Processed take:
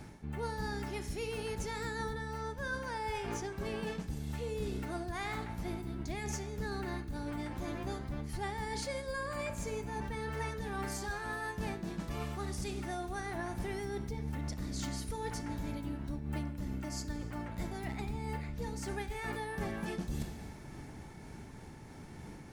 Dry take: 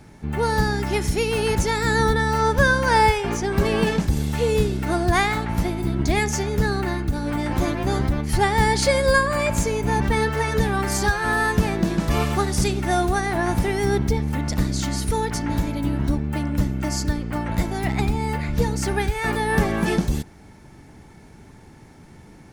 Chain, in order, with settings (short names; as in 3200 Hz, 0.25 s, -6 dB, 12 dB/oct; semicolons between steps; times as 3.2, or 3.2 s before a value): reverb RT60 1.2 s, pre-delay 22 ms, DRR 11.5 dB; reverse; compressor 10:1, threshold -32 dBFS, peak gain reduction 20.5 dB; reverse; noise-modulated level, depth 50%